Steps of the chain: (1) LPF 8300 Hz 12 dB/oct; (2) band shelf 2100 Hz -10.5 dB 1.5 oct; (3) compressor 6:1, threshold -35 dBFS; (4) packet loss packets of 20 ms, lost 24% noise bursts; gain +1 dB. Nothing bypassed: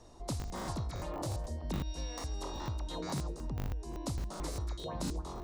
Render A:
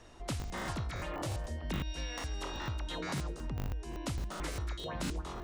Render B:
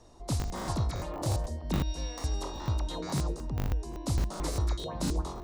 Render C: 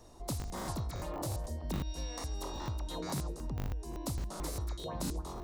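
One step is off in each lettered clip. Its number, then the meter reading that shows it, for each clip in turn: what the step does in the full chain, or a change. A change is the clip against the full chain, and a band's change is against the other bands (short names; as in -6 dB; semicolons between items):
2, 2 kHz band +9.0 dB; 3, mean gain reduction 4.5 dB; 1, 8 kHz band +2.5 dB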